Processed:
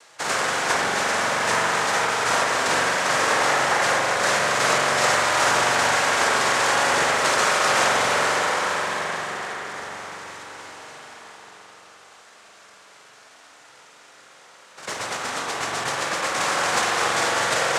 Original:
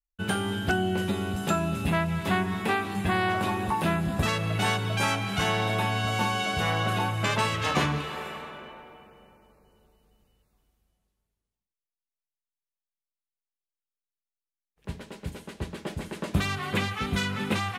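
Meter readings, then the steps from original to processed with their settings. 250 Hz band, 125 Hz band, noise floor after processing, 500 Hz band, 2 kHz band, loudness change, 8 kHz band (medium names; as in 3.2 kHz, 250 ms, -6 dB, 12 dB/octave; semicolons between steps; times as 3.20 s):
-5.0 dB, -10.0 dB, -50 dBFS, +7.5 dB, +10.0 dB, +7.0 dB, +15.5 dB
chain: spectral levelling over time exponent 0.4; high-pass 490 Hz 24 dB/octave; noise-vocoded speech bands 3; spring tank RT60 3.7 s, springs 43 ms, chirp 65 ms, DRR -1.5 dB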